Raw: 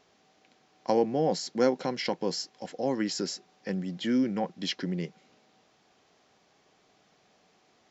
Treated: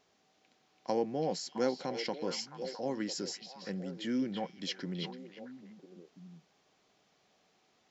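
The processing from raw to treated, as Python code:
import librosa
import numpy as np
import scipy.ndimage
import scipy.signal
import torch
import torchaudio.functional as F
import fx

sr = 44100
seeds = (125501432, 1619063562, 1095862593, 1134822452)

y = fx.high_shelf(x, sr, hz=5300.0, db=4.0)
y = fx.echo_stepped(y, sr, ms=333, hz=3100.0, octaves=-1.4, feedback_pct=70, wet_db=-3.0)
y = F.gain(torch.from_numpy(y), -7.0).numpy()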